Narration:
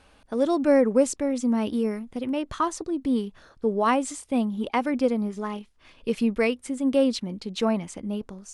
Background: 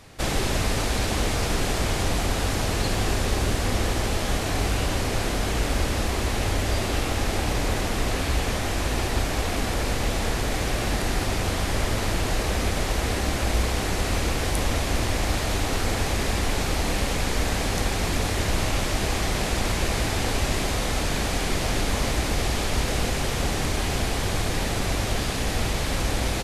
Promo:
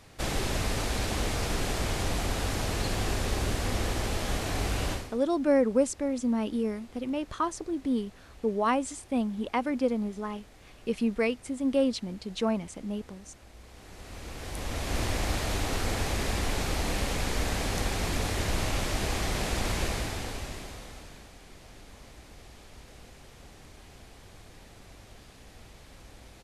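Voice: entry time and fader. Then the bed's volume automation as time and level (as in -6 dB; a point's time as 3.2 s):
4.80 s, -4.0 dB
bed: 4.92 s -5.5 dB
5.21 s -28.5 dB
13.55 s -28.5 dB
15 s -5 dB
19.83 s -5 dB
21.34 s -25.5 dB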